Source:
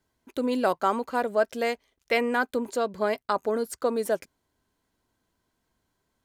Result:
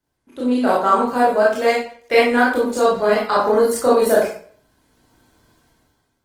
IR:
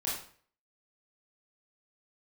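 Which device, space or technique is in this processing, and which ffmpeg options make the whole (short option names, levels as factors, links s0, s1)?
speakerphone in a meeting room: -filter_complex "[1:a]atrim=start_sample=2205[s0];[0:a][s0]afir=irnorm=-1:irlink=0,dynaudnorm=f=180:g=7:m=6.31,volume=0.841" -ar 48000 -c:a libopus -b:a 20k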